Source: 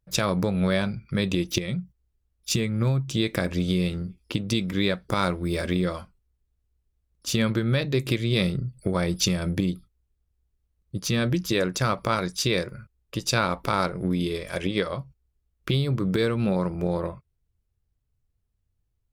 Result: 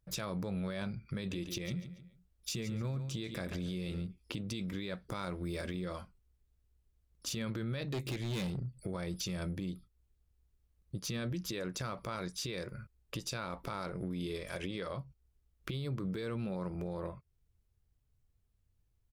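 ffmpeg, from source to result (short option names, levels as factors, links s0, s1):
-filter_complex "[0:a]asplit=3[s0][s1][s2];[s0]afade=t=out:st=1.3:d=0.02[s3];[s1]aecho=1:1:141|282|423:0.2|0.0479|0.0115,afade=t=in:st=1.3:d=0.02,afade=t=out:st=4.06:d=0.02[s4];[s2]afade=t=in:st=4.06:d=0.02[s5];[s3][s4][s5]amix=inputs=3:normalize=0,asettb=1/sr,asplit=3[s6][s7][s8];[s6]atrim=end=7.834[s9];[s7]atrim=start=7.83:end=8.72,asetpts=PTS-STARTPTS,afade=t=in:d=0.004:c=qsin,afade=t=out:st=0.886:d=0.004:c=qsin,asoftclip=type=hard:threshold=0.0631[s10];[s8]atrim=start=8.716[s11];[s9][s10]acrossfade=d=0.004:c1=hsin:c2=qsin[s12];[s12][s11]acrossfade=d=0.004:c1=qsin:c2=hsin,alimiter=limit=0.1:level=0:latency=1:release=29,acompressor=threshold=0.00708:ratio=2"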